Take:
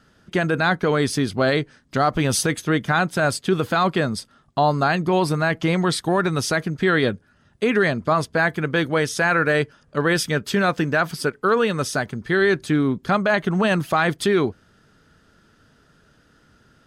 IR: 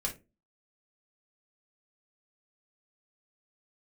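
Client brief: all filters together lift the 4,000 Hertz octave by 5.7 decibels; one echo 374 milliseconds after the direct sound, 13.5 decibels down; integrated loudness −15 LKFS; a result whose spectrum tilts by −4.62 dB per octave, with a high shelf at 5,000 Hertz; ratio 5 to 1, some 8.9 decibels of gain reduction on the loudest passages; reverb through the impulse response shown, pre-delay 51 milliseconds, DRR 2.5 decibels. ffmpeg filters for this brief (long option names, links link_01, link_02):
-filter_complex "[0:a]equalizer=frequency=4000:width_type=o:gain=8.5,highshelf=frequency=5000:gain=-3.5,acompressor=threshold=-24dB:ratio=5,aecho=1:1:374:0.211,asplit=2[link_01][link_02];[1:a]atrim=start_sample=2205,adelay=51[link_03];[link_02][link_03]afir=irnorm=-1:irlink=0,volume=-5.5dB[link_04];[link_01][link_04]amix=inputs=2:normalize=0,volume=11dB"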